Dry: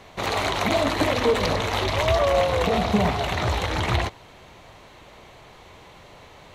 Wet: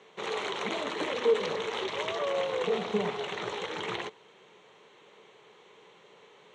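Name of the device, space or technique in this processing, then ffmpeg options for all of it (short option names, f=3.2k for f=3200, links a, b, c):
television speaker: -af "highpass=f=180:w=0.5412,highpass=f=180:w=1.3066,equalizer=f=270:t=q:w=4:g=-9,equalizer=f=430:t=q:w=4:g=10,equalizer=f=670:t=q:w=4:g=-8,equalizer=f=3.2k:t=q:w=4:g=4,equalizer=f=4.8k:t=q:w=4:g=-9,lowpass=f=7.9k:w=0.5412,lowpass=f=7.9k:w=1.3066,volume=-9dB"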